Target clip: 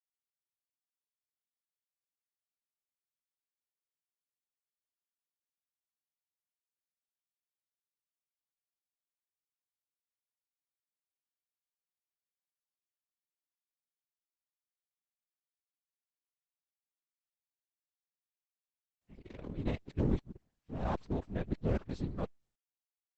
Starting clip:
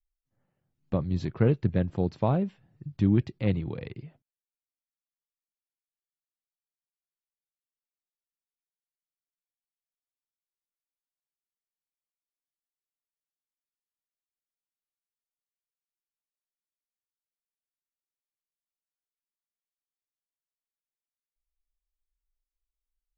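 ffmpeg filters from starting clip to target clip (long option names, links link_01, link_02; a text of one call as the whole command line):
ffmpeg -i in.wav -af "areverse,agate=range=-33dB:threshold=-49dB:ratio=3:detection=peak,aeval=exprs='max(val(0),0)':channel_layout=same,afftfilt=real='hypot(re,im)*cos(2*PI*random(0))':imag='hypot(re,im)*sin(2*PI*random(1))':win_size=512:overlap=0.75" -ar 48000 -c:a libopus -b:a 10k out.opus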